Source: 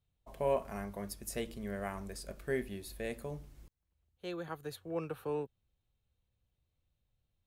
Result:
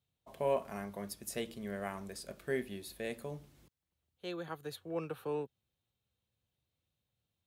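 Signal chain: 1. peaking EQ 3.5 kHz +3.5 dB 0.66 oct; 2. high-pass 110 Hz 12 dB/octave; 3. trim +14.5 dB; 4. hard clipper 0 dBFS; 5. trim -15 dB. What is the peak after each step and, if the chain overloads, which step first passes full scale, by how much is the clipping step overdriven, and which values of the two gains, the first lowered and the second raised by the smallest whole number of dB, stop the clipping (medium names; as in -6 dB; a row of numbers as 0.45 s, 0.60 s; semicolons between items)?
-20.0 dBFS, -20.0 dBFS, -5.5 dBFS, -5.5 dBFS, -20.5 dBFS; nothing clips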